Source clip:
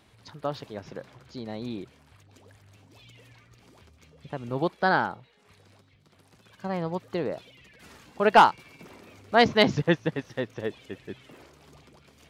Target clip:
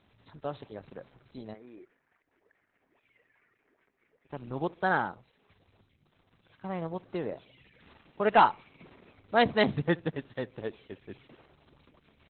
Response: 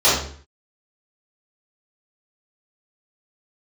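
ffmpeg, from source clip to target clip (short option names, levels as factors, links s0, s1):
-filter_complex "[0:a]asplit=3[s0][s1][s2];[s0]afade=t=out:st=1.53:d=0.02[s3];[s1]highpass=460,equalizer=f=540:t=q:w=4:g=-7,equalizer=f=840:t=q:w=4:g=-8,equalizer=f=1200:t=q:w=4:g=-6,equalizer=f=1900:t=q:w=4:g=5,lowpass=f=2000:w=0.5412,lowpass=f=2000:w=1.3066,afade=t=in:st=1.53:d=0.02,afade=t=out:st=4.29:d=0.02[s4];[s2]afade=t=in:st=4.29:d=0.02[s5];[s3][s4][s5]amix=inputs=3:normalize=0,asplit=2[s6][s7];[s7]adelay=69,lowpass=f=1000:p=1,volume=0.0841,asplit=2[s8][s9];[s9]adelay=69,lowpass=f=1000:p=1,volume=0.37,asplit=2[s10][s11];[s11]adelay=69,lowpass=f=1000:p=1,volume=0.37[s12];[s6][s8][s10][s12]amix=inputs=4:normalize=0,volume=0.631" -ar 48000 -c:a libopus -b:a 8k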